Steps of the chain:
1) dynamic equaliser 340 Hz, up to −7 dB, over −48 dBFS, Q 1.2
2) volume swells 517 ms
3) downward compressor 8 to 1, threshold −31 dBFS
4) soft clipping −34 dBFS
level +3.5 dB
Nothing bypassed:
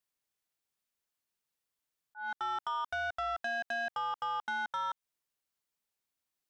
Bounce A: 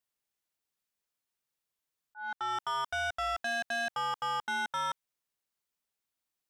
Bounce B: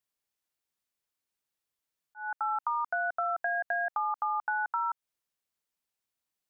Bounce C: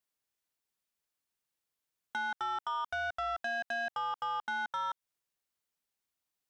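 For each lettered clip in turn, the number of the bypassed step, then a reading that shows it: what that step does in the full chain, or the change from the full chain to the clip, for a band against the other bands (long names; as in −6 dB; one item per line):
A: 3, average gain reduction 6.0 dB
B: 4, distortion level −13 dB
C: 2, change in momentary loudness spread −4 LU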